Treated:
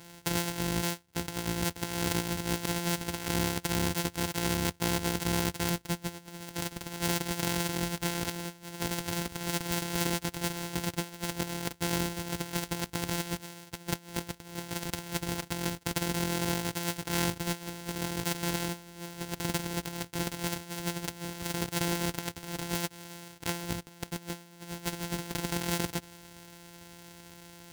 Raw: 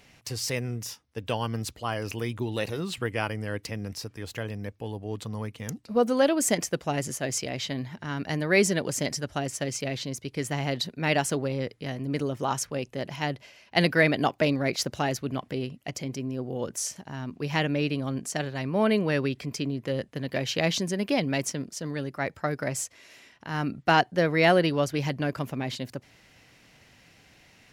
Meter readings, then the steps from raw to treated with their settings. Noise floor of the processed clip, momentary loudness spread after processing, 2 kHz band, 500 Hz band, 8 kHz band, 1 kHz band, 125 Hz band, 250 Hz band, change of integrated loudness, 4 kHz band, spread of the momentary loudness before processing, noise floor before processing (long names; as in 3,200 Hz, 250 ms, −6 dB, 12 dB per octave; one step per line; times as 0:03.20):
−54 dBFS, 11 LU, −6.5 dB, −10.0 dB, −1.5 dB, −6.0 dB, −4.0 dB, −4.5 dB, −4.5 dB, −1.5 dB, 13 LU, −58 dBFS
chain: samples sorted by size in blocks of 256 samples
soft clipping −13.5 dBFS, distortion −18 dB
high-shelf EQ 2,600 Hz +10 dB
notch comb filter 600 Hz
compressor whose output falls as the input rises −33 dBFS, ratio −0.5